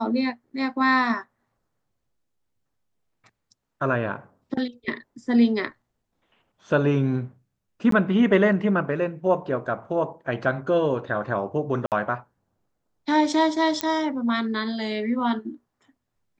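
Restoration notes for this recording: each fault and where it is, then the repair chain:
7.91–7.92 gap 13 ms
11.86–11.92 gap 58 ms
13.81 pop -8 dBFS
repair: de-click; interpolate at 7.91, 13 ms; interpolate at 11.86, 58 ms

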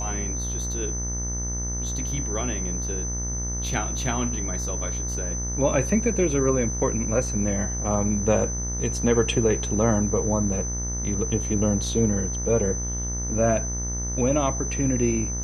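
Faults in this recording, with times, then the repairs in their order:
buzz 60 Hz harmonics 35 -30 dBFS
tone 6100 Hz -30 dBFS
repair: notch 6100 Hz, Q 30; de-hum 60 Hz, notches 35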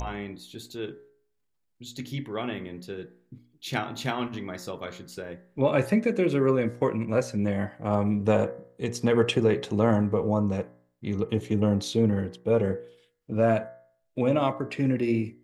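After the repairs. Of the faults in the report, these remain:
none

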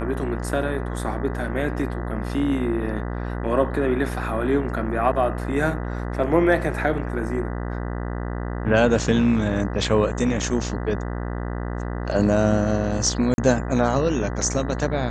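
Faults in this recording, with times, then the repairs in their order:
buzz 60 Hz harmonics 33 -28 dBFS
13.34–13.38 gap 41 ms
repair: de-hum 60 Hz, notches 33; interpolate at 13.34, 41 ms

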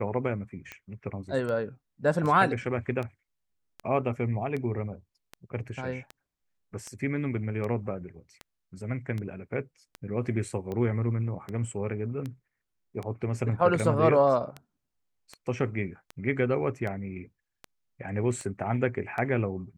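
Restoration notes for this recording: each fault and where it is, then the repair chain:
tick 78 rpm -23 dBFS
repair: de-click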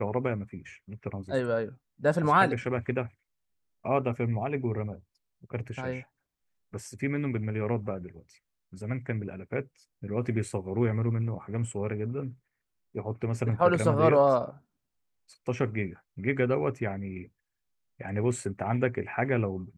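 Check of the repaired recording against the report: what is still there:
none

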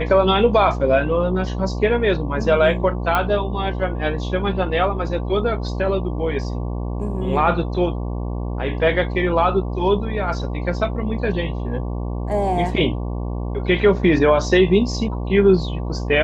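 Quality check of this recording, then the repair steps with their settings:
buzz 60 Hz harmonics 19 -25 dBFS
3.15 pop -7 dBFS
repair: de-click; de-hum 60 Hz, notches 19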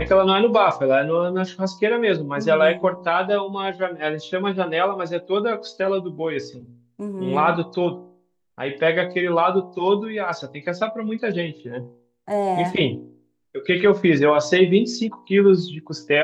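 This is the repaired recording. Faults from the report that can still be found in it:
none

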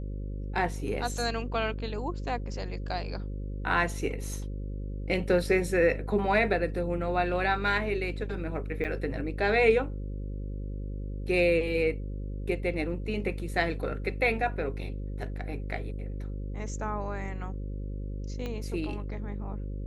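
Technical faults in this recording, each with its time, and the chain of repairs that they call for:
buzz 50 Hz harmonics 11 -35 dBFS
8.84–8.85 gap 7.4 ms
18.46 pop -23 dBFS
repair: de-click; de-hum 50 Hz, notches 11; interpolate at 8.84, 7.4 ms

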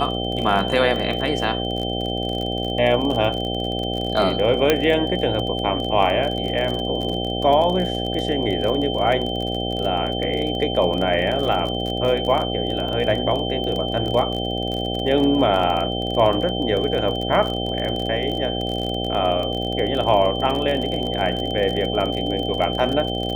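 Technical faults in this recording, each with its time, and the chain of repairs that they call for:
buzz 60 Hz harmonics 13 -26 dBFS
crackle 31/s -25 dBFS
tone 3100 Hz -28 dBFS
4.7 pop -2 dBFS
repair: de-click; notch 3100 Hz, Q 30; de-hum 60 Hz, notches 13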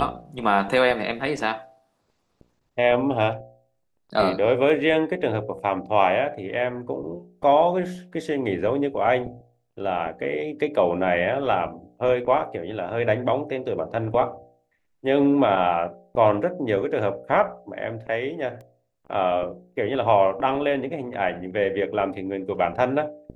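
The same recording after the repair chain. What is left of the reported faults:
4.7 pop

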